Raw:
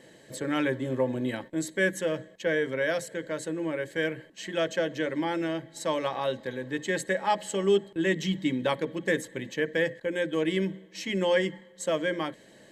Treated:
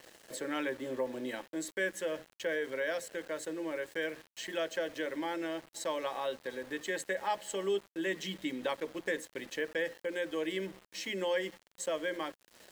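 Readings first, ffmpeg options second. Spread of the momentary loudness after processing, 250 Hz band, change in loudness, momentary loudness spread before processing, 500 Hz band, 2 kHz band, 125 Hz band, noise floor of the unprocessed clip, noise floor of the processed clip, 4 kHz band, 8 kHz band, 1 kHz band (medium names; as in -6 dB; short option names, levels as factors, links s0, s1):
6 LU, -9.5 dB, -7.5 dB, 8 LU, -7.0 dB, -6.0 dB, -17.0 dB, -55 dBFS, -70 dBFS, -5.5 dB, -4.0 dB, -6.5 dB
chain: -af "highpass=320,acompressor=threshold=0.00398:ratio=1.5,aeval=exprs='val(0)*gte(abs(val(0)),0.00282)':c=same,volume=1.26"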